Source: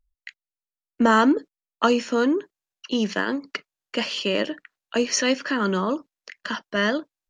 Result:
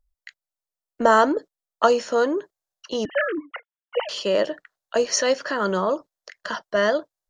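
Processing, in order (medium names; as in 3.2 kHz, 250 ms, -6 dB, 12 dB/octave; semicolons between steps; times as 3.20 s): 3.05–4.09 s: formants replaced by sine waves; fifteen-band graphic EQ 250 Hz -11 dB, 630 Hz +7 dB, 2.5 kHz -9 dB; trim +1.5 dB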